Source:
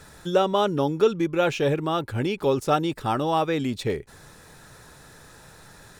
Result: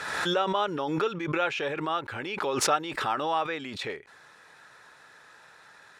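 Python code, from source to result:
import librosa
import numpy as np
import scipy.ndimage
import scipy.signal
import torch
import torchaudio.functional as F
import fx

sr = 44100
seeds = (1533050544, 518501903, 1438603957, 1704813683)

y = fx.bandpass_q(x, sr, hz=1700.0, q=0.83)
y = fx.pre_swell(y, sr, db_per_s=37.0)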